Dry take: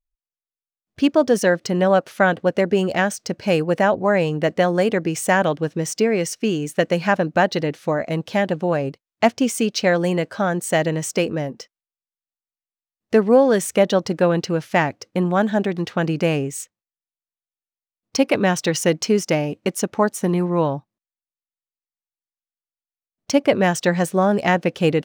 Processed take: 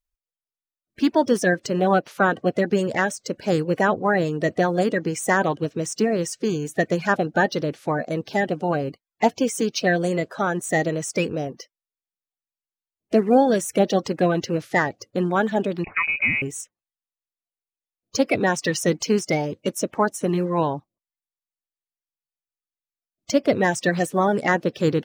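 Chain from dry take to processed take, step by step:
spectral magnitudes quantised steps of 30 dB
0:15.84–0:16.42: voice inversion scrambler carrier 2,700 Hz
level −2 dB

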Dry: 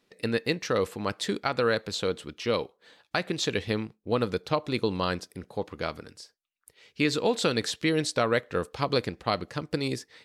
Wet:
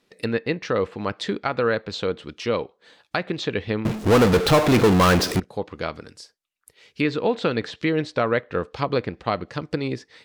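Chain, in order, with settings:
treble cut that deepens with the level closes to 2,600 Hz, closed at −25 dBFS
0:03.85–0:05.40: power curve on the samples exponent 0.35
level +3.5 dB

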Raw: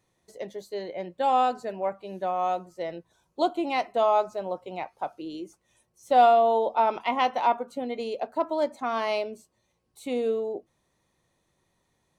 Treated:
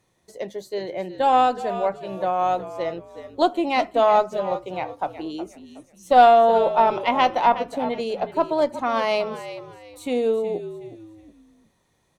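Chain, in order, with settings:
harmonic generator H 2 −18 dB, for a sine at −9 dBFS
echo with shifted repeats 368 ms, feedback 32%, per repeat −61 Hz, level −12.5 dB
level +5 dB

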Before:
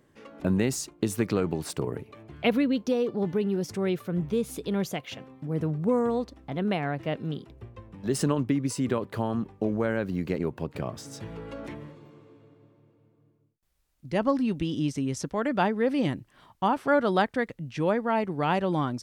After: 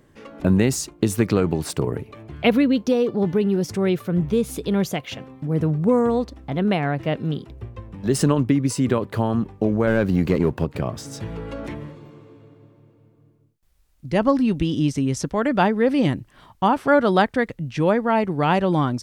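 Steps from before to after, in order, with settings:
0:09.87–0:10.65: leveller curve on the samples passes 1
low-shelf EQ 83 Hz +8.5 dB
level +6 dB

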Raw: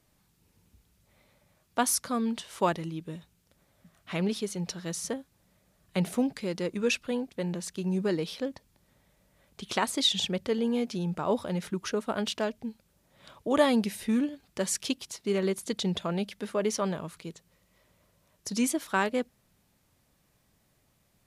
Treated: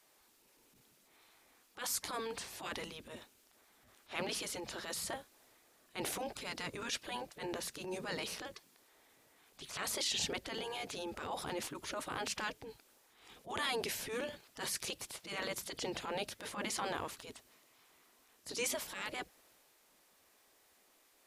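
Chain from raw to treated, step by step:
brickwall limiter −22 dBFS, peak gain reduction 10.5 dB
gate on every frequency bin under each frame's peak −10 dB weak
transient designer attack −11 dB, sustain +2 dB
level +4 dB

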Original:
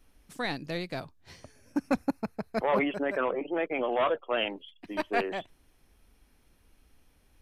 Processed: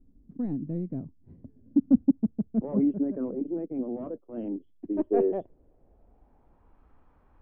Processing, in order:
0:03.54–0:04.44: transient designer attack −9 dB, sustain −5 dB
low-pass filter sweep 250 Hz → 1,100 Hz, 0:04.30–0:06.88
level +2.5 dB

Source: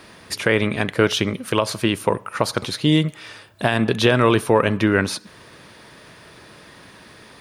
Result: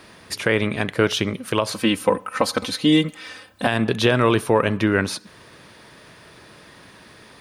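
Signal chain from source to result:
0:01.72–0:03.67: comb filter 3.9 ms, depth 84%
level −1.5 dB

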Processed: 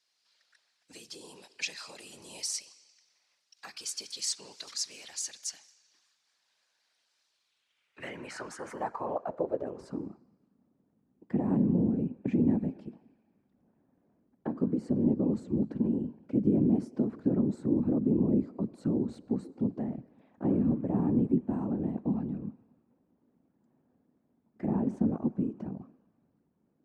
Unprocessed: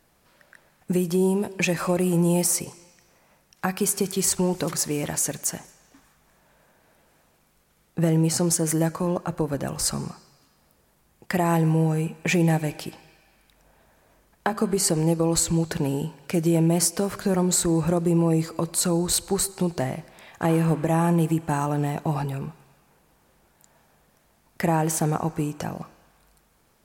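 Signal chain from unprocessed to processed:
Bessel low-pass filter 8,800 Hz
random phases in short frames
band-pass filter sweep 4,600 Hz → 240 Hz, 0:07.31–0:10.26

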